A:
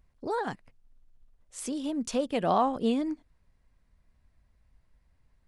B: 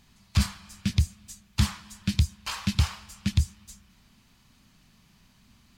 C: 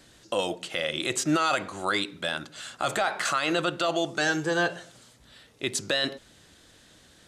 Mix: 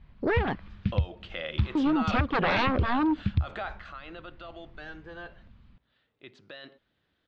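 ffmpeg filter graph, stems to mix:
-filter_complex "[0:a]adynamicequalizer=threshold=0.0126:dfrequency=410:dqfactor=0.75:tfrequency=410:tqfactor=0.75:attack=5:release=100:ratio=0.375:range=2.5:mode=boostabove:tftype=bell,aeval=exprs='0.299*sin(PI/2*5.62*val(0)/0.299)':c=same,volume=0.376,asplit=3[s0][s1][s2];[s0]atrim=end=0.68,asetpts=PTS-STARTPTS,afade=t=out:st=0.676:d=0.004:c=hsin[s3];[s1]atrim=start=0.68:end=1.75,asetpts=PTS-STARTPTS,volume=0[s4];[s2]atrim=start=1.75,asetpts=PTS-STARTPTS,afade=t=in:d=0.004:c=hsin[s5];[s3][s4][s5]concat=n=3:v=0:a=1,asplit=2[s6][s7];[1:a]aemphasis=mode=reproduction:type=bsi,volume=0.531[s8];[2:a]adelay=600,volume=0.473,afade=t=out:st=3.51:d=0.31:silence=0.251189[s9];[s7]apad=whole_len=254868[s10];[s8][s10]sidechaincompress=threshold=0.0631:ratio=8:attack=16:release=390[s11];[s6][s11][s9]amix=inputs=3:normalize=0,lowpass=f=3600:w=0.5412,lowpass=f=3600:w=1.3066,equalizer=f=1300:t=o:w=0.77:g=2,acompressor=threshold=0.0794:ratio=6"

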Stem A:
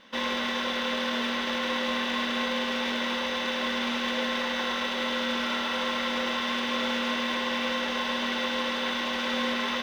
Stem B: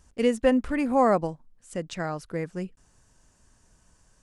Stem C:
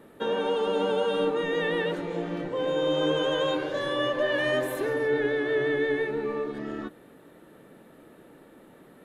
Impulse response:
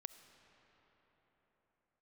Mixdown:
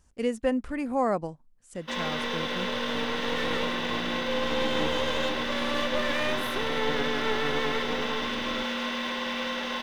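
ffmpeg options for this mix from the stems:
-filter_complex "[0:a]adelay=1750,volume=0.75[s0];[1:a]volume=0.562,asplit=2[s1][s2];[2:a]aeval=exprs='max(val(0),0)':c=same,adelay=1750,volume=1[s3];[s2]apad=whole_len=476079[s4];[s3][s4]sidechaincompress=threshold=0.0112:ratio=8:attack=16:release=1290[s5];[s0][s1][s5]amix=inputs=3:normalize=0"

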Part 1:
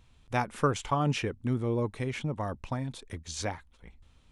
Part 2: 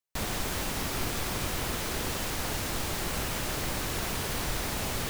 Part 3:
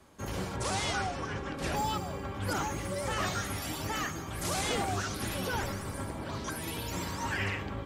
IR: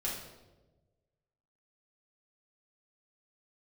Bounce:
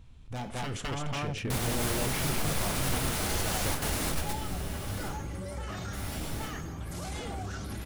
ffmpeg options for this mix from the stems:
-filter_complex "[0:a]aeval=exprs='0.0562*(abs(mod(val(0)/0.0562+3,4)-2)-1)':c=same,volume=0.841,asplit=4[s0][s1][s2][s3];[s1]volume=0.178[s4];[s2]volume=0.668[s5];[1:a]equalizer=f=10000:t=o:w=0.39:g=5.5,alimiter=level_in=1.26:limit=0.0631:level=0:latency=1:release=153,volume=0.794,adelay=1350,volume=1.41,asplit=3[s6][s7][s8];[s6]atrim=end=5.08,asetpts=PTS-STARTPTS,afade=t=out:st=5.076:d=0.004:c=hsin[s9];[s7]atrim=start=5.08:end=5.93,asetpts=PTS-STARTPTS,volume=0[s10];[s8]atrim=start=5.93,asetpts=PTS-STARTPTS,afade=t=in:d=0.004:c=hsin[s11];[s9][s10][s11]concat=n=3:v=0:a=1,asplit=2[s12][s13];[s13]volume=0.282[s14];[2:a]equalizer=f=64:w=7.5:g=13,adelay=2500,volume=0.422,asplit=2[s15][s16];[s16]volume=0.251[s17];[s3]apad=whole_len=284438[s18];[s12][s18]sidechaingate=range=0.0224:threshold=0.00112:ratio=16:detection=peak[s19];[s0][s15]amix=inputs=2:normalize=0,lowshelf=f=390:g=10,alimiter=level_in=2.24:limit=0.0631:level=0:latency=1:release=25,volume=0.447,volume=1[s20];[3:a]atrim=start_sample=2205[s21];[s4][s14][s17]amix=inputs=3:normalize=0[s22];[s22][s21]afir=irnorm=-1:irlink=0[s23];[s5]aecho=0:1:211:1[s24];[s19][s20][s23][s24]amix=inputs=4:normalize=0"

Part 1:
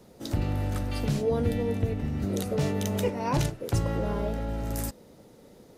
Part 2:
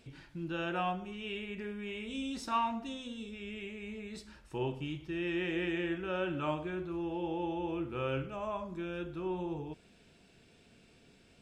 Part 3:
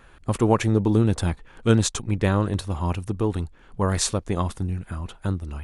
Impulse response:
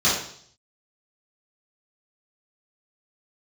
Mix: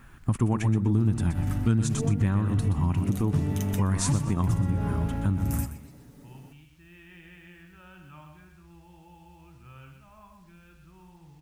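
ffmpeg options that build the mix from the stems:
-filter_complex "[0:a]aecho=1:1:7.1:0.48,adelay=750,volume=1,asplit=2[s0][s1];[s1]volume=0.158[s2];[1:a]asubboost=boost=9.5:cutoff=110,acrossover=split=430[s3][s4];[s3]acompressor=threshold=0.00158:ratio=2[s5];[s5][s4]amix=inputs=2:normalize=0,adelay=1700,volume=0.299,asplit=2[s6][s7];[s7]volume=0.473[s8];[2:a]volume=1,asplit=3[s9][s10][s11];[s10]volume=0.335[s12];[s11]apad=whole_len=288023[s13];[s0][s13]sidechaincompress=threshold=0.0562:ratio=8:attack=16:release=153[s14];[s2][s8][s12]amix=inputs=3:normalize=0,aecho=0:1:124|248|372|496:1|0.25|0.0625|0.0156[s15];[s14][s6][s9][s15]amix=inputs=4:normalize=0,equalizer=f=125:t=o:w=1:g=6,equalizer=f=250:t=o:w=1:g=5,equalizer=f=500:t=o:w=1:g=-11,equalizer=f=4000:t=o:w=1:g=-8,acrusher=bits=10:mix=0:aa=0.000001,acompressor=threshold=0.0794:ratio=3"

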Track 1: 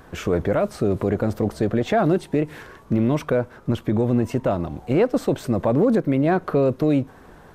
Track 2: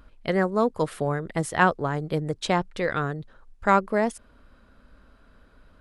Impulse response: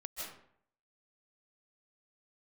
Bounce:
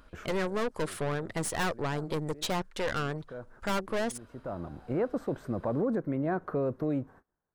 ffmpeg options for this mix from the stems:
-filter_complex "[0:a]agate=range=0.0282:threshold=0.01:ratio=16:detection=peak,highshelf=f=2100:t=q:w=1.5:g=-8,volume=0.266[s0];[1:a]bass=f=250:g=-6,treble=f=4000:g=3,aeval=exprs='(tanh(28.2*val(0)+0.55)-tanh(0.55))/28.2':c=same,volume=1.26,asplit=2[s1][s2];[s2]apad=whole_len=332519[s3];[s0][s3]sidechaincompress=threshold=0.00316:ratio=8:attack=49:release=371[s4];[s4][s1]amix=inputs=2:normalize=0"

